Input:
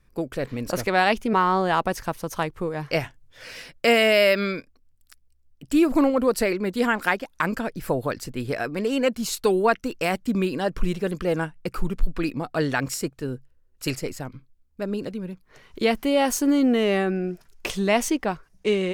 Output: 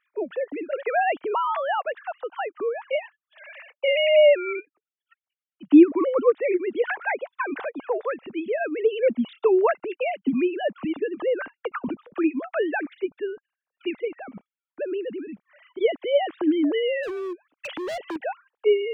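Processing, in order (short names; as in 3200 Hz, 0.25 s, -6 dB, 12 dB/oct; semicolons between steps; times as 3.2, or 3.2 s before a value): sine-wave speech; in parallel at +2 dB: compressor, threshold -31 dBFS, peak gain reduction 22 dB; 17.03–18.16 on the sum: overloaded stage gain 26 dB; gain -2.5 dB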